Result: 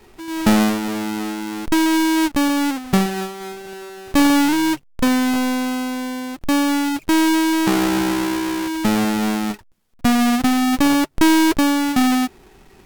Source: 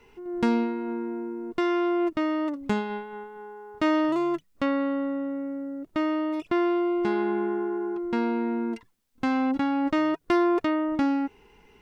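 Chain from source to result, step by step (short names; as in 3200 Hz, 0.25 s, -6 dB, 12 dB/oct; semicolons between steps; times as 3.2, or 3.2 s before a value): half-waves squared off; speed mistake 48 kHz file played as 44.1 kHz; gain +3.5 dB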